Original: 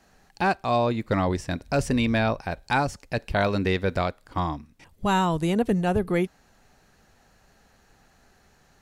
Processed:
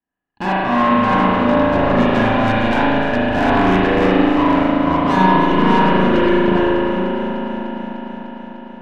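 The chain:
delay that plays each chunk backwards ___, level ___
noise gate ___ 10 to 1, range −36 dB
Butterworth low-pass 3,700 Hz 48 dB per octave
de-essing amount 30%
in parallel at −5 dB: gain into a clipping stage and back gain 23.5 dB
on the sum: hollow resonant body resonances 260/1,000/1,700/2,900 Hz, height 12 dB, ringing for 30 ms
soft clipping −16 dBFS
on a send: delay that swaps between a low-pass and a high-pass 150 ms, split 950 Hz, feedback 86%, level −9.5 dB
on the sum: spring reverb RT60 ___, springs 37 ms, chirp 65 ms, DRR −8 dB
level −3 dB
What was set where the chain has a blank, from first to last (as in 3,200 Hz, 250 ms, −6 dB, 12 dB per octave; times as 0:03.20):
389 ms, −1 dB, −49 dBFS, 2.5 s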